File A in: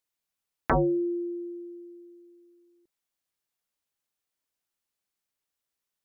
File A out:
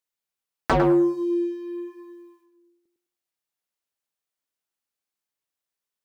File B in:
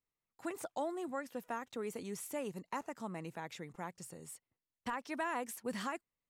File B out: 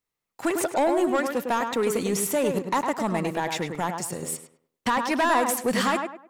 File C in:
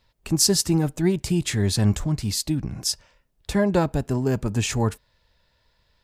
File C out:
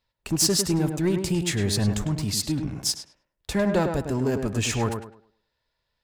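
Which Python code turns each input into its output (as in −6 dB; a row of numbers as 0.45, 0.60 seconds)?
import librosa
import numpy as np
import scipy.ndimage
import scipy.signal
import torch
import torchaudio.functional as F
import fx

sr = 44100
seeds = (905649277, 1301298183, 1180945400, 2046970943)

p1 = fx.low_shelf(x, sr, hz=210.0, db=-4.5)
p2 = fx.leveller(p1, sr, passes=2)
p3 = p2 + fx.echo_tape(p2, sr, ms=103, feedback_pct=32, wet_db=-4.5, lp_hz=2000.0, drive_db=4.0, wow_cents=15, dry=0)
y = librosa.util.normalize(p3) * 10.0 ** (-12 / 20.0)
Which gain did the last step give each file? +1.5, +11.0, −7.5 decibels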